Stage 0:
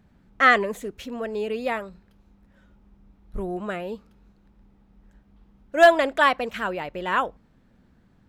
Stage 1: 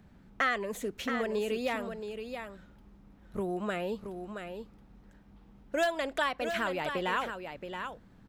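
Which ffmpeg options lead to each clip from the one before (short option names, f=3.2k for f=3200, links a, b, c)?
-filter_complex "[0:a]acrossover=split=100|2800[a][b][c];[a]acompressor=threshold=-59dB:ratio=4[d];[b]acompressor=threshold=-32dB:ratio=4[e];[c]acompressor=threshold=-42dB:ratio=4[f];[d][e][f]amix=inputs=3:normalize=0,aecho=1:1:674:0.422,volume=1.5dB"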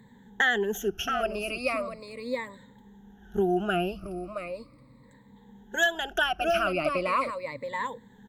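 -af "afftfilt=real='re*pow(10,23/40*sin(2*PI*(1*log(max(b,1)*sr/1024/100)/log(2)-(-0.38)*(pts-256)/sr)))':imag='im*pow(10,23/40*sin(2*PI*(1*log(max(b,1)*sr/1024/100)/log(2)-(-0.38)*(pts-256)/sr)))':win_size=1024:overlap=0.75"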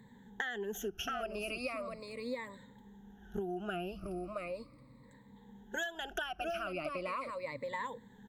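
-af "acompressor=threshold=-31dB:ratio=12,volume=-3.5dB"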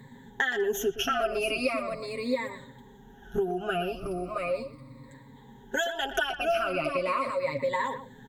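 -filter_complex "[0:a]aecho=1:1:7.4:0.78,asplit=2[a][b];[b]adelay=120,highpass=300,lowpass=3.4k,asoftclip=type=hard:threshold=-28dB,volume=-11dB[c];[a][c]amix=inputs=2:normalize=0,volume=7.5dB"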